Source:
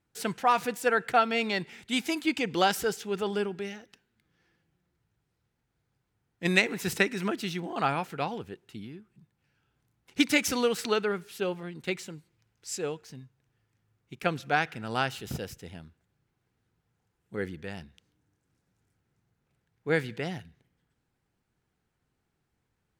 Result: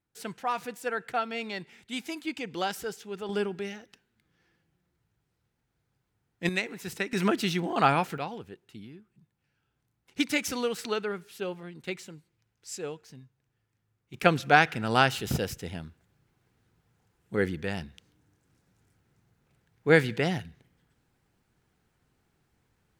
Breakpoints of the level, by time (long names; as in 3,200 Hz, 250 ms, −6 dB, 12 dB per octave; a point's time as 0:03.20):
−6.5 dB
from 0:03.29 +0.5 dB
from 0:06.49 −7 dB
from 0:07.13 +5 dB
from 0:08.18 −3.5 dB
from 0:14.14 +6.5 dB